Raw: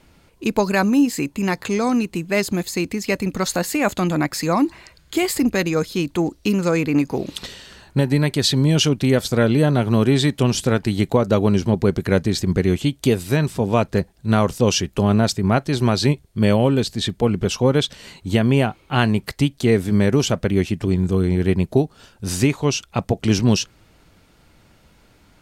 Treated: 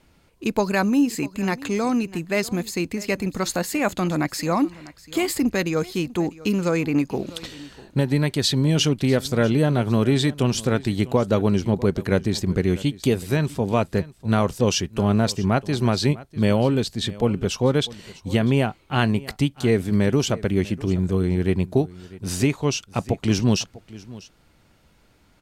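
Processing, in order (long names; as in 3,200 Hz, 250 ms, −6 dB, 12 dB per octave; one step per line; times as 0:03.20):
in parallel at −11 dB: slack as between gear wheels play −32 dBFS
on the sum: single-tap delay 647 ms −19.5 dB
level −5 dB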